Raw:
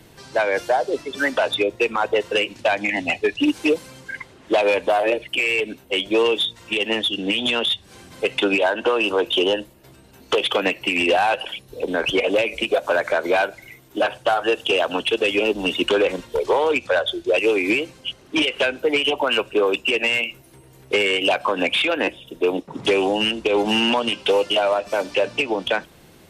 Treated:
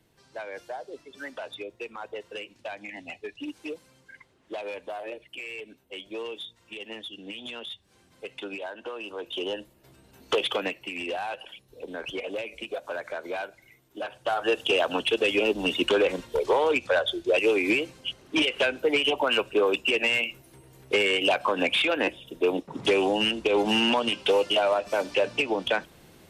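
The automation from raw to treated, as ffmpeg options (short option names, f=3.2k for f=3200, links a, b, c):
-af "volume=5dB,afade=t=in:st=9.14:d=1.22:silence=0.237137,afade=t=out:st=10.36:d=0.49:silence=0.354813,afade=t=in:st=14.11:d=0.43:silence=0.316228"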